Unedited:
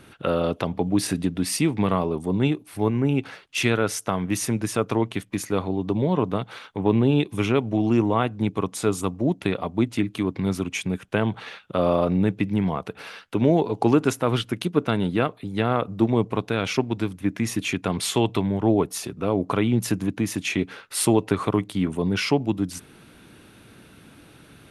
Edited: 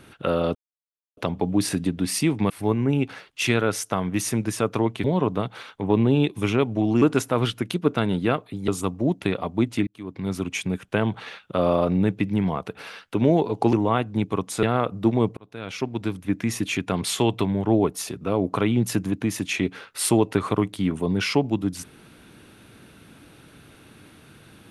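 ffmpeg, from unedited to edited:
ffmpeg -i in.wav -filter_complex "[0:a]asplit=10[link_01][link_02][link_03][link_04][link_05][link_06][link_07][link_08][link_09][link_10];[link_01]atrim=end=0.55,asetpts=PTS-STARTPTS,afade=type=out:start_time=0.546:duration=0.004:curve=hsin,apad=pad_dur=0.62[link_11];[link_02]atrim=start=0.55:end=1.882,asetpts=PTS-STARTPTS,afade=type=in:duration=0.004:curve=hsin[link_12];[link_03]atrim=start=2.658:end=5.202[link_13];[link_04]atrim=start=5.998:end=7.982[link_14];[link_05]atrim=start=13.928:end=15.592[link_15];[link_06]atrim=start=8.878:end=10.07,asetpts=PTS-STARTPTS,afade=type=out:start_time=1.188:duration=0.004:curve=hsin[link_16];[link_07]atrim=start=10.07:end=13.932,asetpts=PTS-STARTPTS,afade=type=in:duration=0.6[link_17];[link_08]atrim=start=7.978:end=8.882[link_18];[link_09]atrim=start=15.588:end=16.33,asetpts=PTS-STARTPTS,afade=type=out:start_time=0.738:duration=0.004:curve=hsin[link_19];[link_10]atrim=start=16.33,asetpts=PTS-STARTPTS,afade=type=in:duration=0.8[link_20];[link_11][link_12]concat=n=2:v=0:a=1[link_21];[link_21][link_13]acrossfade=duration=0.004:curve1=hsin:curve2=hsin[link_22];[link_22][link_14]acrossfade=duration=0.004:curve1=hsin:curve2=hsin[link_23];[link_23][link_15]acrossfade=duration=0.004:curve1=hsin:curve2=hsin[link_24];[link_16][link_17]concat=n=2:v=0:a=1[link_25];[link_24][link_25]acrossfade=duration=0.004:curve1=hsin:curve2=hsin[link_26];[link_26][link_18]acrossfade=duration=0.004:curve1=hsin:curve2=hsin[link_27];[link_19][link_20]concat=n=2:v=0:a=1[link_28];[link_27][link_28]acrossfade=duration=0.004:curve1=hsin:curve2=hsin" out.wav

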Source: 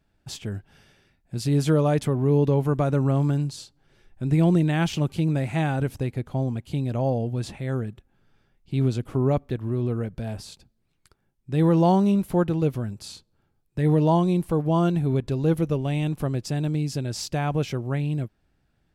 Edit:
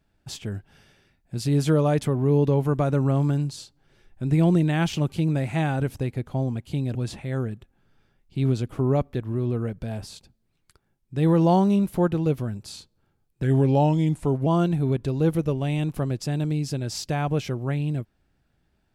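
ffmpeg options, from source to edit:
ffmpeg -i in.wav -filter_complex "[0:a]asplit=4[link_01][link_02][link_03][link_04];[link_01]atrim=end=6.952[link_05];[link_02]atrim=start=7.308:end=13.794[link_06];[link_03]atrim=start=13.79:end=14.7,asetpts=PTS-STARTPTS,asetrate=38808,aresample=44100,atrim=end_sample=45603,asetpts=PTS-STARTPTS[link_07];[link_04]atrim=start=14.696[link_08];[link_05][link_06]acrossfade=duration=0.004:curve1=hsin:curve2=hsin[link_09];[link_09][link_07]acrossfade=duration=0.004:curve1=hsin:curve2=hsin[link_10];[link_10][link_08]acrossfade=duration=0.004:curve1=hsin:curve2=hsin" out.wav

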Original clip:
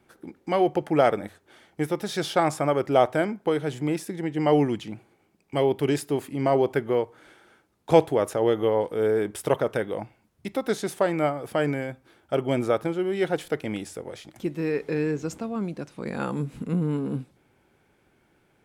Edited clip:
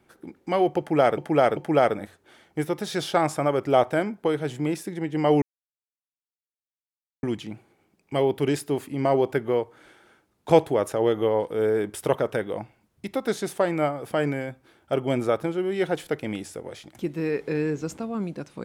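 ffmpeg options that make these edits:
ffmpeg -i in.wav -filter_complex "[0:a]asplit=4[link_01][link_02][link_03][link_04];[link_01]atrim=end=1.182[link_05];[link_02]atrim=start=0.788:end=1.182[link_06];[link_03]atrim=start=0.788:end=4.64,asetpts=PTS-STARTPTS,afade=type=out:start_time=3.848:duration=0.004:curve=hsin,apad=pad_dur=1.81[link_07];[link_04]atrim=start=4.64,asetpts=PTS-STARTPTS,afade=type=in:duration=0.004:curve=hsin[link_08];[link_05][link_06]acrossfade=duration=0.004:curve1=hsin:curve2=hsin[link_09];[link_07][link_08]concat=n=2:v=0:a=1[link_10];[link_09][link_10]acrossfade=duration=0.004:curve1=hsin:curve2=hsin" out.wav

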